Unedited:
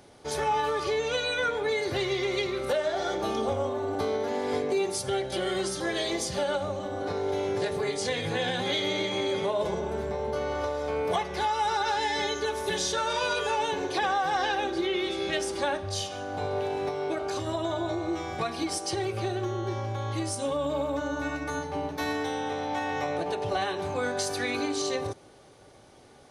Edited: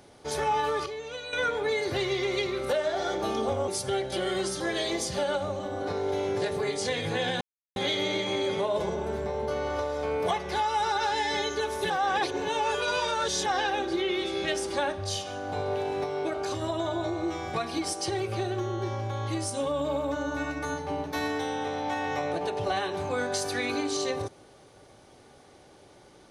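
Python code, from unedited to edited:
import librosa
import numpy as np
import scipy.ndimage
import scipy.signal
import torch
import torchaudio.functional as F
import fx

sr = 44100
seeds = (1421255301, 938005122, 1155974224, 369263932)

y = fx.edit(x, sr, fx.clip_gain(start_s=0.86, length_s=0.47, db=-9.5),
    fx.cut(start_s=3.68, length_s=1.2),
    fx.insert_silence(at_s=8.61, length_s=0.35),
    fx.reverse_span(start_s=12.75, length_s=1.56), tone=tone)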